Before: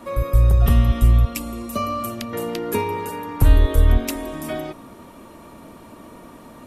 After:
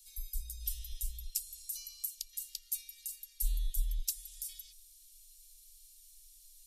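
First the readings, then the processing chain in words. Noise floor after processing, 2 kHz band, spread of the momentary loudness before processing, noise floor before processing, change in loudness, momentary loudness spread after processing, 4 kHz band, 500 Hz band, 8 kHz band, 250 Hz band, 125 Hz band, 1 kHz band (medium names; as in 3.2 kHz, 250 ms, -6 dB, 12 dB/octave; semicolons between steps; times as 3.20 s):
-60 dBFS, -30.5 dB, 13 LU, -44 dBFS, -19.0 dB, 19 LU, -10.5 dB, under -40 dB, -2.5 dB, under -40 dB, under -25 dB, under -40 dB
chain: inverse Chebyshev band-stop 130–950 Hz, stop band 80 dB; in parallel at -1.5 dB: compression, threshold -40 dBFS, peak gain reduction 17.5 dB; on the sum: trim -5 dB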